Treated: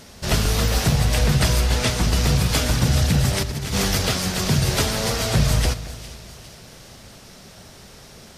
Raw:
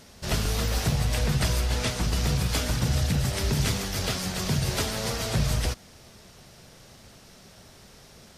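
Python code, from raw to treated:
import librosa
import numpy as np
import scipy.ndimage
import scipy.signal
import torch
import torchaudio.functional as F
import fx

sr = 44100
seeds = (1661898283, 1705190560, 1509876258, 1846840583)

p1 = fx.over_compress(x, sr, threshold_db=-29.0, ratio=-0.5, at=(3.42, 4.01))
p2 = p1 + fx.echo_split(p1, sr, split_hz=2100.0, low_ms=216, high_ms=406, feedback_pct=52, wet_db=-15.5, dry=0)
y = F.gain(torch.from_numpy(p2), 6.5).numpy()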